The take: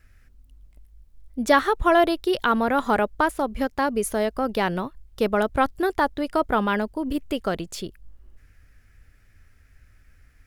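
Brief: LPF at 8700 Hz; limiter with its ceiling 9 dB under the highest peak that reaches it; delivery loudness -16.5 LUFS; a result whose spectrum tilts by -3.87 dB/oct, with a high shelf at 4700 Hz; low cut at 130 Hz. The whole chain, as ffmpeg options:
-af "highpass=130,lowpass=8.7k,highshelf=f=4.7k:g=-5.5,volume=10.5dB,alimiter=limit=-5dB:level=0:latency=1"

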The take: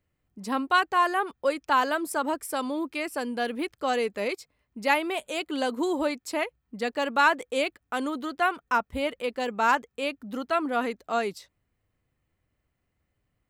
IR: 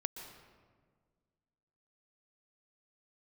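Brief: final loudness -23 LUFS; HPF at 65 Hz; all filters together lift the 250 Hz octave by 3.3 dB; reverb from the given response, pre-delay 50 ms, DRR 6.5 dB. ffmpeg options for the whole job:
-filter_complex "[0:a]highpass=65,equalizer=f=250:t=o:g=4,asplit=2[a][b];[1:a]atrim=start_sample=2205,adelay=50[c];[b][c]afir=irnorm=-1:irlink=0,volume=-6.5dB[d];[a][d]amix=inputs=2:normalize=0,volume=3dB"

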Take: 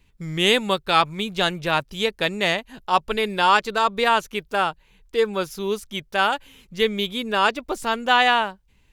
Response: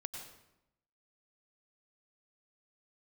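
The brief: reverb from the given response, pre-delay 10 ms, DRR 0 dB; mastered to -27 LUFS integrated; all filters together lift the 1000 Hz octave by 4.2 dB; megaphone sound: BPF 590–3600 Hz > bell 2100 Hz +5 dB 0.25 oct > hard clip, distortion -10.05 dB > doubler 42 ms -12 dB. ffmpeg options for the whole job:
-filter_complex "[0:a]equalizer=f=1k:t=o:g=6,asplit=2[a][b];[1:a]atrim=start_sample=2205,adelay=10[c];[b][c]afir=irnorm=-1:irlink=0,volume=1.5dB[d];[a][d]amix=inputs=2:normalize=0,highpass=590,lowpass=3.6k,equalizer=f=2.1k:t=o:w=0.25:g=5,asoftclip=type=hard:threshold=-10.5dB,asplit=2[e][f];[f]adelay=42,volume=-12dB[g];[e][g]amix=inputs=2:normalize=0,volume=-8.5dB"

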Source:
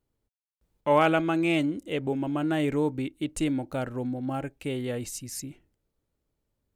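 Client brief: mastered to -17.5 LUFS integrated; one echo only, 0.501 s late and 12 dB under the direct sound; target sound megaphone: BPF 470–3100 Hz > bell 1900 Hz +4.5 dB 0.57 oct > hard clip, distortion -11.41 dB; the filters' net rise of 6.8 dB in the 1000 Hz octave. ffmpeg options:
-af "highpass=470,lowpass=3.1k,equalizer=f=1k:t=o:g=8.5,equalizer=f=1.9k:t=o:w=0.57:g=4.5,aecho=1:1:501:0.251,asoftclip=type=hard:threshold=-14.5dB,volume=10.5dB"

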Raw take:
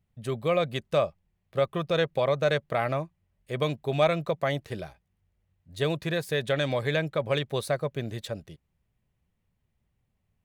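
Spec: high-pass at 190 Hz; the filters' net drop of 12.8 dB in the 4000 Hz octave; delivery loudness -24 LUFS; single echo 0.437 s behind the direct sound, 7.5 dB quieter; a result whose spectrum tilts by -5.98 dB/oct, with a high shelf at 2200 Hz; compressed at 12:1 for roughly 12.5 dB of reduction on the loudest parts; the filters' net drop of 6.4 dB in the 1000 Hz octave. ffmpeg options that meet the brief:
-af "highpass=190,equalizer=f=1k:t=o:g=-7.5,highshelf=f=2.2k:g=-7,equalizer=f=4k:t=o:g=-9,acompressor=threshold=-35dB:ratio=12,aecho=1:1:437:0.422,volume=17dB"

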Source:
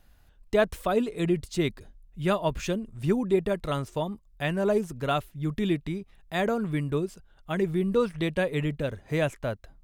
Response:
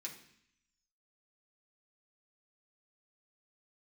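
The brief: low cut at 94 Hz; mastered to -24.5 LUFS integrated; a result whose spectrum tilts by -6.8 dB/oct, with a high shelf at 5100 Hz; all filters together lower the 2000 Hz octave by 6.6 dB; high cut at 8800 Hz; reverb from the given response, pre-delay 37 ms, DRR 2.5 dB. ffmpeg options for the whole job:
-filter_complex "[0:a]highpass=94,lowpass=8.8k,equalizer=f=2k:t=o:g=-8,highshelf=f=5.1k:g=-4,asplit=2[a][b];[1:a]atrim=start_sample=2205,adelay=37[c];[b][c]afir=irnorm=-1:irlink=0,volume=0.5dB[d];[a][d]amix=inputs=2:normalize=0,volume=3dB"

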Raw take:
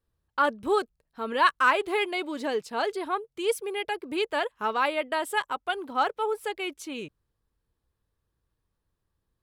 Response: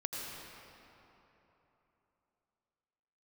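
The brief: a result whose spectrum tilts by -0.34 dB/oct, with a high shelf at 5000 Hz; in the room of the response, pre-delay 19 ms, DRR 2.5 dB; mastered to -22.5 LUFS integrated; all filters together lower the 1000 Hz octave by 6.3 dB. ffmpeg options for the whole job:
-filter_complex "[0:a]equalizer=f=1k:t=o:g=-7.5,highshelf=f=5k:g=-7,asplit=2[a][b];[1:a]atrim=start_sample=2205,adelay=19[c];[b][c]afir=irnorm=-1:irlink=0,volume=-5dB[d];[a][d]amix=inputs=2:normalize=0,volume=6.5dB"

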